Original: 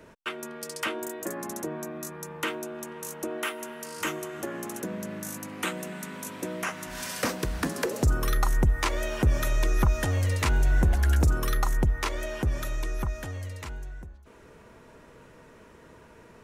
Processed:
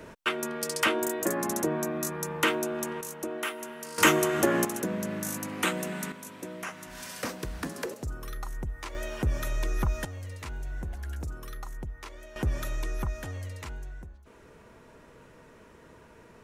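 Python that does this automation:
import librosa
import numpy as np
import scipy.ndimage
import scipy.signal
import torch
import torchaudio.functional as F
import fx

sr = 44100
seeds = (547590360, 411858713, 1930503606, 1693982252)

y = fx.gain(x, sr, db=fx.steps((0.0, 5.5), (3.01, -1.5), (3.98, 10.5), (4.65, 3.0), (6.12, -6.0), (7.94, -12.5), (8.95, -5.0), (10.05, -14.0), (12.36, -1.5)))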